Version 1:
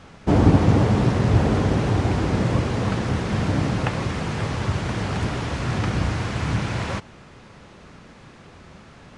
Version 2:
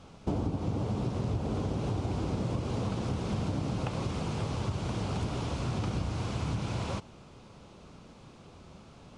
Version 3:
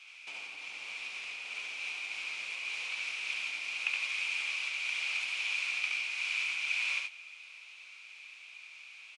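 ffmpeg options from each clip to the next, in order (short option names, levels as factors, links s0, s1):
-af "equalizer=f=1800:w=2.4:g=-12,acompressor=threshold=0.0794:ratio=10,volume=0.531"
-filter_complex "[0:a]highpass=f=2400:t=q:w=11,asplit=2[s0][s1];[s1]aecho=0:1:70|90:0.596|0.355[s2];[s0][s2]amix=inputs=2:normalize=0"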